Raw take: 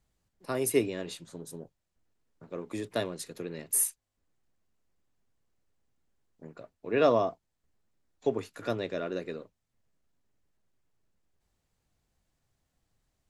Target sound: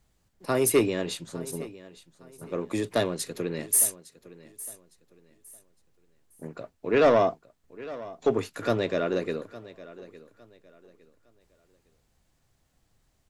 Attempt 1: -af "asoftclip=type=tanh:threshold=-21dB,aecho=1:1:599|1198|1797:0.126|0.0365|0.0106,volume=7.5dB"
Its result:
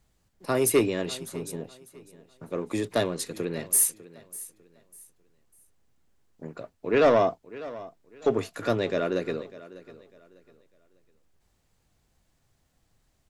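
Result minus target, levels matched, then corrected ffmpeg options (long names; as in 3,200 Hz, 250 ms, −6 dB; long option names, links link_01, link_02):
echo 260 ms early
-af "asoftclip=type=tanh:threshold=-21dB,aecho=1:1:859|1718|2577:0.126|0.0365|0.0106,volume=7.5dB"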